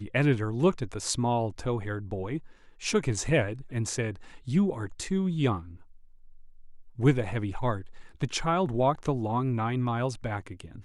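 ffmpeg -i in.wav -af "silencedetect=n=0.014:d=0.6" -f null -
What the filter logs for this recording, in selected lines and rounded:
silence_start: 5.75
silence_end: 6.99 | silence_duration: 1.24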